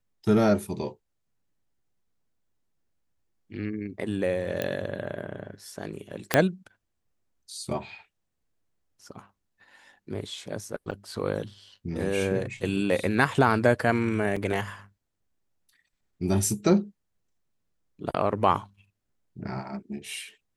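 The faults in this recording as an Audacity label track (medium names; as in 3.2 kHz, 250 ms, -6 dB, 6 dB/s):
4.620000	4.620000	pop -14 dBFS
6.340000	6.340000	pop -3 dBFS
10.910000	10.920000	dropout 7.2 ms
14.360000	14.360000	dropout 4.8 ms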